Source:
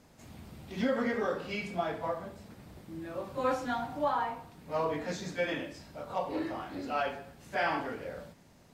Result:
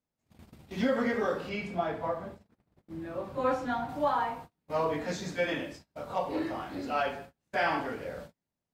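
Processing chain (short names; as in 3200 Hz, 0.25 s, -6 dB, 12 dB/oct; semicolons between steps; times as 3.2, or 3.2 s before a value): gate -46 dBFS, range -32 dB; 1.49–3.89 high shelf 3500 Hz -8.5 dB; gain +2 dB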